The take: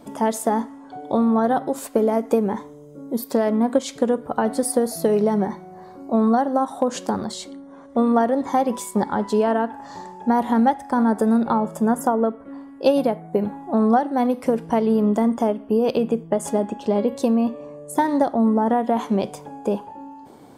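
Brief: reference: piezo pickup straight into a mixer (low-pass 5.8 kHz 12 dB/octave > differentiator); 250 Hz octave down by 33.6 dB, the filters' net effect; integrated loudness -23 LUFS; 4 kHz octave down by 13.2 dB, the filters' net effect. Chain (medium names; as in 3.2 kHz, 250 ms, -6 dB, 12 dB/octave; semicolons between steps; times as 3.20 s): low-pass 5.8 kHz 12 dB/octave; differentiator; peaking EQ 250 Hz -4.5 dB; peaking EQ 4 kHz -9 dB; trim +21 dB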